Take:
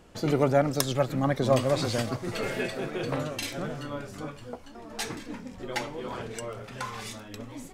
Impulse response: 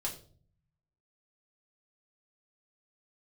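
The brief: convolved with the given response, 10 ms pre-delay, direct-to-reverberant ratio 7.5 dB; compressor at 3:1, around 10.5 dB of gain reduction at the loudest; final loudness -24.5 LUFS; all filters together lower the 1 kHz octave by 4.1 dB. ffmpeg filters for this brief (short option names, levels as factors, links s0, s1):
-filter_complex "[0:a]equalizer=f=1000:t=o:g=-6,acompressor=threshold=0.0224:ratio=3,asplit=2[s0][s1];[1:a]atrim=start_sample=2205,adelay=10[s2];[s1][s2]afir=irnorm=-1:irlink=0,volume=0.355[s3];[s0][s3]amix=inputs=2:normalize=0,volume=3.98"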